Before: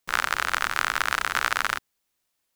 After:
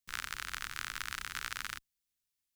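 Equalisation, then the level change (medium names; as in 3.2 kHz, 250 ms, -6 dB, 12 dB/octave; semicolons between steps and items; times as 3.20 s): amplifier tone stack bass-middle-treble 6-0-2; +5.0 dB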